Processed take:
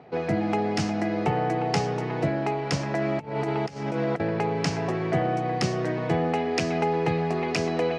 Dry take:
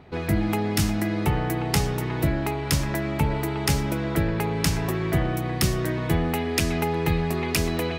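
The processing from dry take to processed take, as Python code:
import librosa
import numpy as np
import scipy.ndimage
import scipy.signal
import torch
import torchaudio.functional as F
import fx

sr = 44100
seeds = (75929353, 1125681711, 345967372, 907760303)

y = fx.over_compress(x, sr, threshold_db=-27.0, ratio=-0.5, at=(2.98, 4.2))
y = fx.cabinet(y, sr, low_hz=120.0, low_slope=24, high_hz=6200.0, hz=(480.0, 730.0, 3600.0), db=(7, 9, -6))
y = y * 10.0 ** (-2.0 / 20.0)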